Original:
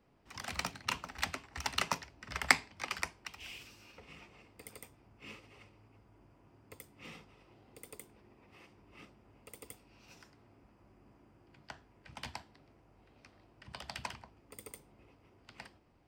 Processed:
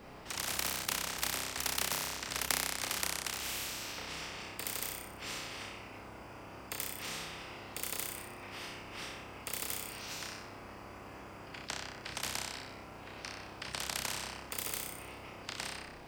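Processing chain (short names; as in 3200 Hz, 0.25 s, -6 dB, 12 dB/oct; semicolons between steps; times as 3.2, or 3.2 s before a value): flutter echo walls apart 5.3 m, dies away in 0.61 s; spectral compressor 4:1; gain -7 dB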